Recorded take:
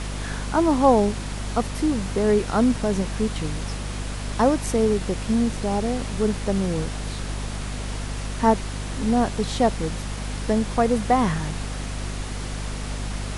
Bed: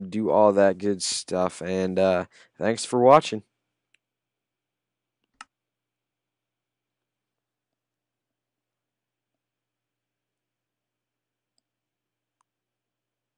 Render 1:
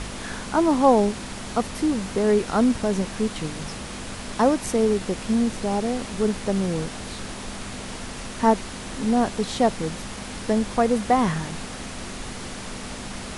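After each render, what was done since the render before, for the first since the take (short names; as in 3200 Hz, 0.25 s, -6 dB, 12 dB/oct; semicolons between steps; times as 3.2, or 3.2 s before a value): de-hum 50 Hz, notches 3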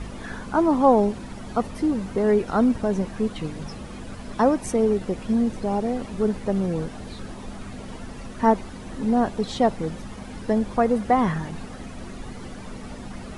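denoiser 12 dB, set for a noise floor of -35 dBFS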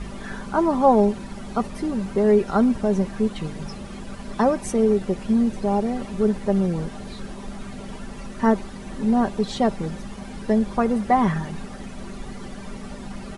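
comb 5.1 ms, depth 47%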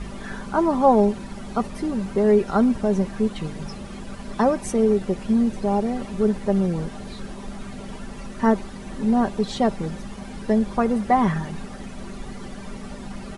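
nothing audible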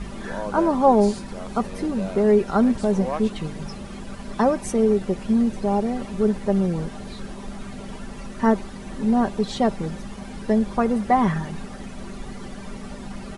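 add bed -13.5 dB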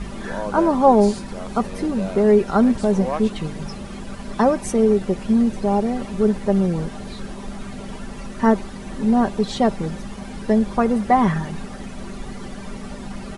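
gain +2.5 dB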